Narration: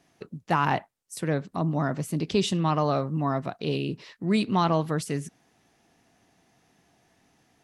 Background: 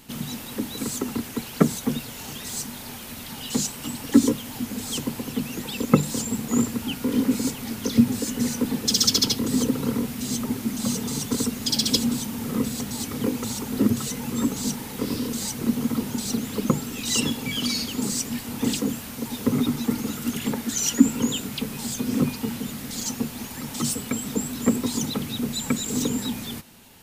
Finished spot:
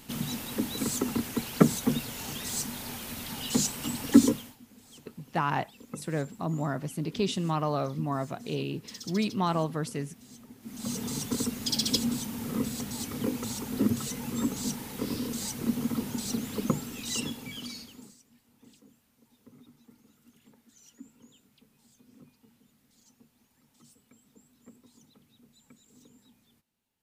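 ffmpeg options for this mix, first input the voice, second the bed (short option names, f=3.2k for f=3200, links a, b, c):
-filter_complex "[0:a]adelay=4850,volume=-4.5dB[a];[1:a]volume=16.5dB,afade=t=out:st=4.21:d=0.35:silence=0.0794328,afade=t=in:st=10.6:d=0.44:silence=0.125893,afade=t=out:st=16.63:d=1.54:silence=0.0421697[b];[a][b]amix=inputs=2:normalize=0"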